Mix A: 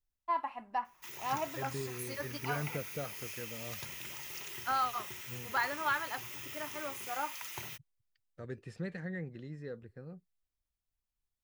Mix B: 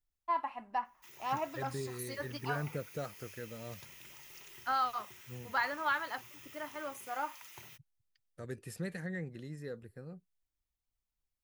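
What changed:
second voice: remove high-frequency loss of the air 130 metres
background −9.0 dB

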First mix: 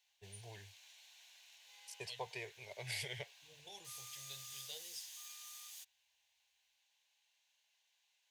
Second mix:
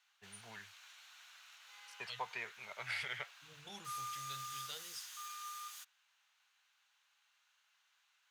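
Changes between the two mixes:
first voice: add three-way crossover with the lows and the highs turned down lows −13 dB, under 530 Hz, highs −12 dB, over 4,200 Hz
master: remove phaser with its sweep stopped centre 540 Hz, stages 4

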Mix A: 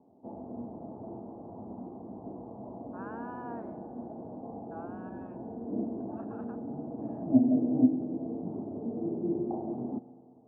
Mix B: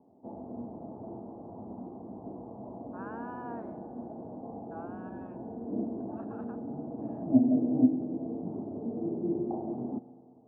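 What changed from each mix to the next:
speech: remove high-frequency loss of the air 79 metres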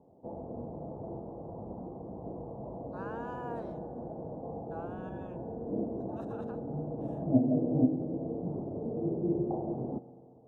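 master: remove loudspeaker in its box 110–2,100 Hz, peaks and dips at 150 Hz −9 dB, 240 Hz +6 dB, 510 Hz −8 dB

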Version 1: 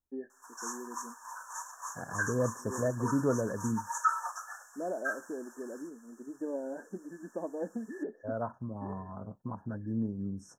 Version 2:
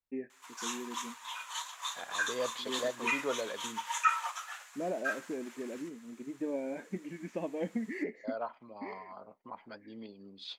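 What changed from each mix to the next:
first voice: remove band-pass filter 240–3,400 Hz
second voice: add band-pass filter 530–3,800 Hz
master: remove linear-phase brick-wall band-stop 1,800–5,300 Hz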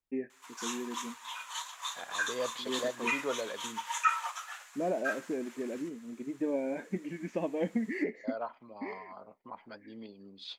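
first voice +3.5 dB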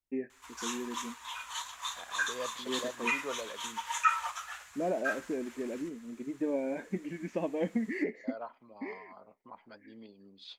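second voice −4.5 dB
background: remove Chebyshev high-pass filter 480 Hz, order 5

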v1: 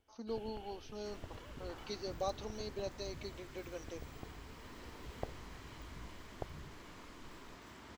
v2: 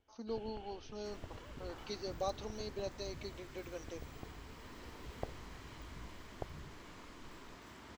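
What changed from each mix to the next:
first sound: add high-frequency loss of the air 69 metres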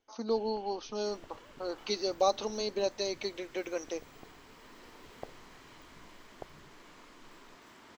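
speech +11.5 dB
master: add parametric band 61 Hz −15 dB 2.2 octaves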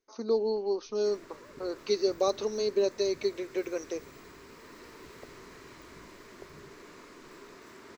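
first sound −8.0 dB
second sound +4.5 dB
master: add thirty-one-band graphic EQ 400 Hz +9 dB, 800 Hz −7 dB, 3,150 Hz −7 dB

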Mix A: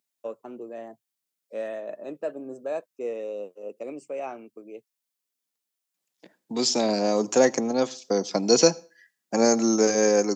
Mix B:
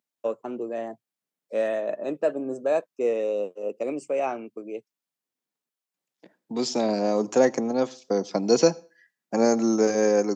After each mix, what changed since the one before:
first voice +7.0 dB
second voice: add high-shelf EQ 2,800 Hz −9 dB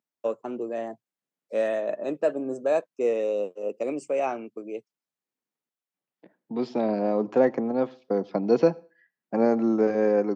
second voice: add high-frequency loss of the air 410 metres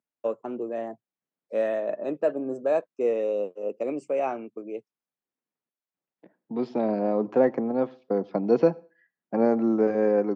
master: add high-shelf EQ 3,800 Hz −11.5 dB

